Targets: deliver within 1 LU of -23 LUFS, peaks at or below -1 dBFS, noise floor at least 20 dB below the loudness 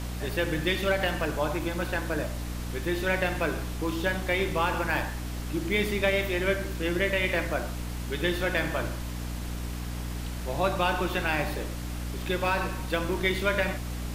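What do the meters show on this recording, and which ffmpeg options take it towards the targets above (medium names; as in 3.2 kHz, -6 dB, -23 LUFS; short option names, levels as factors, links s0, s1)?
hum 60 Hz; highest harmonic 300 Hz; hum level -32 dBFS; noise floor -35 dBFS; noise floor target -49 dBFS; loudness -29.0 LUFS; peak level -12.5 dBFS; loudness target -23.0 LUFS
-> -af "bandreject=f=60:t=h:w=4,bandreject=f=120:t=h:w=4,bandreject=f=180:t=h:w=4,bandreject=f=240:t=h:w=4,bandreject=f=300:t=h:w=4"
-af "afftdn=nr=14:nf=-35"
-af "volume=2"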